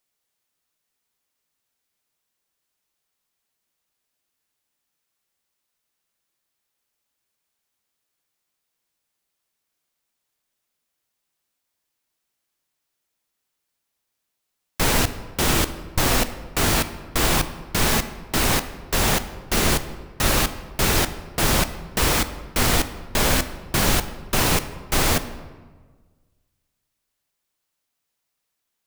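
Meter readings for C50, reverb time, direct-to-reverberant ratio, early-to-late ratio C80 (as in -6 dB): 13.0 dB, 1.5 s, 11.0 dB, 14.5 dB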